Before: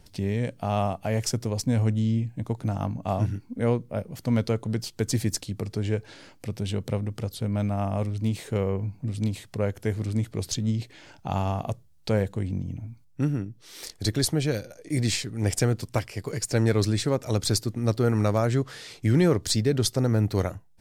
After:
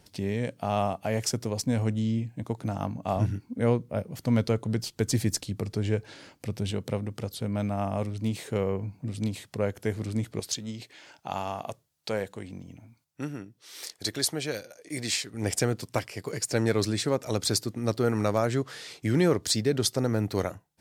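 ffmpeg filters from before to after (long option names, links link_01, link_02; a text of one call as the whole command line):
ffmpeg -i in.wav -af "asetnsamples=nb_out_samples=441:pad=0,asendcmd='3.16 highpass f 47;6.71 highpass f 150;10.4 highpass f 610;15.34 highpass f 210',highpass=frequency=160:poles=1" out.wav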